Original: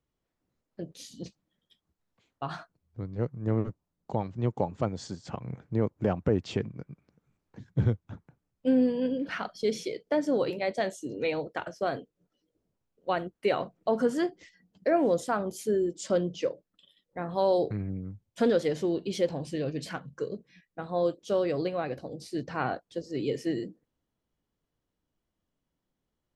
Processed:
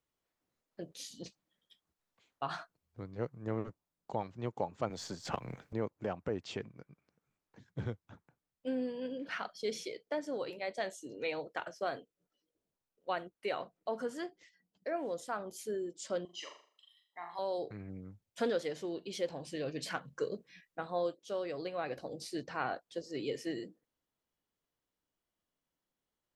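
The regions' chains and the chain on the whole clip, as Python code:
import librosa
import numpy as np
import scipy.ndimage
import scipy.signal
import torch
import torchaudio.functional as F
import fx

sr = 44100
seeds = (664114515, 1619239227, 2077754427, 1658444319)

y = fx.chain(x, sr, fx.halfwave_gain(db=-3.0),
    fx.band_squash(depth_pct=70), at=(4.9, 5.73))
y = fx.chain(y, sr, fx.highpass(hz=630.0, slope=12),
    fx.comb(ms=1.0, depth=0.91),
    fx.room_flutter(wall_m=6.9, rt60_s=0.46), at=(16.25, 17.39))
y = fx.low_shelf(y, sr, hz=350.0, db=-11.5)
y = fx.rider(y, sr, range_db=10, speed_s=0.5)
y = F.gain(torch.from_numpy(y), -4.5).numpy()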